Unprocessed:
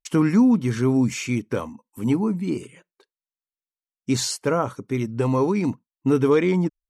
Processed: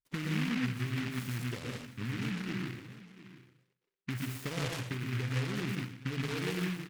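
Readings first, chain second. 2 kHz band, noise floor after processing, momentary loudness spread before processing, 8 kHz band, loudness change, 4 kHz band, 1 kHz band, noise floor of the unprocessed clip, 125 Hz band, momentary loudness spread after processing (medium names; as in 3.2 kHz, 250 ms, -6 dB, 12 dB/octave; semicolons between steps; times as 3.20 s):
-4.5 dB, -84 dBFS, 11 LU, -14.5 dB, -13.5 dB, -6.5 dB, -15.0 dB, under -85 dBFS, -8.5 dB, 13 LU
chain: rattle on loud lows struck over -21 dBFS, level -24 dBFS; peaking EQ 120 Hz +12.5 dB 0.93 oct; level-controlled noise filter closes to 730 Hz, open at -10 dBFS; compression 6:1, threshold -27 dBFS, peak gain reduction 16.5 dB; delay 702 ms -16.5 dB; plate-style reverb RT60 0.52 s, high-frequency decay 0.95×, pre-delay 105 ms, DRR -1.5 dB; delay time shaken by noise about 1.9 kHz, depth 0.27 ms; trim -9 dB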